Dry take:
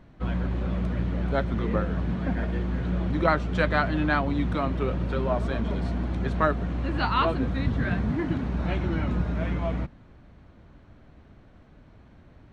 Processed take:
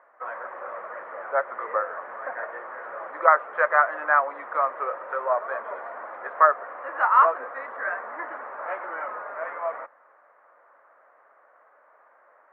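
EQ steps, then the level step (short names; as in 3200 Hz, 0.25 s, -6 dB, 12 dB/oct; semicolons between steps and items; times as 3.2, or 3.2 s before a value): elliptic band-pass 530–1900 Hz, stop band 60 dB; bell 1200 Hz +8 dB 0.57 oct; +3.0 dB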